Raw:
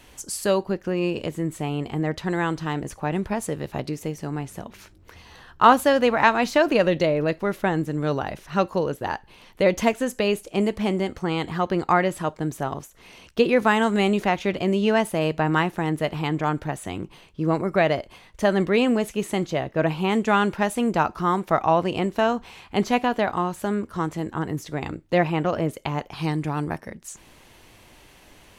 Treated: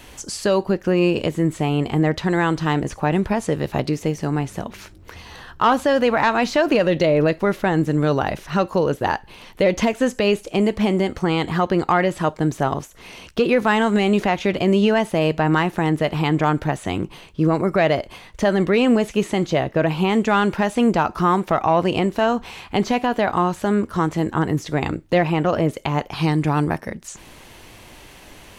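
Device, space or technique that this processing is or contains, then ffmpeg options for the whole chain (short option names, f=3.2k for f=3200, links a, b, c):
soft clipper into limiter: -filter_complex "[0:a]asoftclip=type=tanh:threshold=-7dB,alimiter=limit=-15.5dB:level=0:latency=1:release=176,acrossover=split=6900[a][b];[b]acompressor=threshold=-54dB:ratio=4:attack=1:release=60[c];[a][c]amix=inputs=2:normalize=0,volume=7.5dB"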